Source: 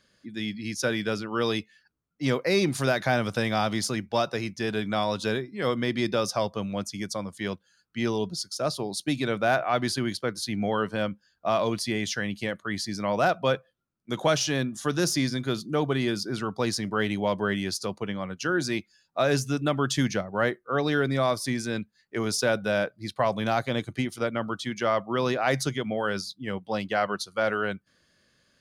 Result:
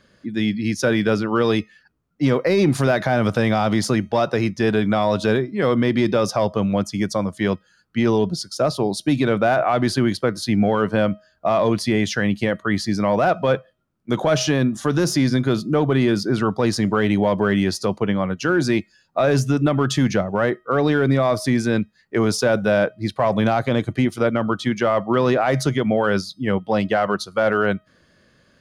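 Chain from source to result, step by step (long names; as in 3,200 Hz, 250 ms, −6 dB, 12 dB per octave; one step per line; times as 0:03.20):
high-shelf EQ 2,400 Hz −11 dB
tuned comb filter 630 Hz, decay 0.44 s, mix 30%
in parallel at −7.5 dB: gain into a clipping stage and back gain 23.5 dB
on the sum: boost into a limiter +20.5 dB
level −8.5 dB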